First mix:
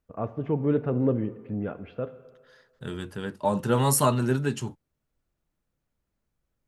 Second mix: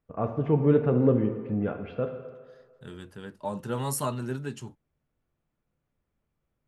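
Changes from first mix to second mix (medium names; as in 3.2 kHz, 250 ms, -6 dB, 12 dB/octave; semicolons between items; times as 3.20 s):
first voice: send +9.5 dB; second voice -8.0 dB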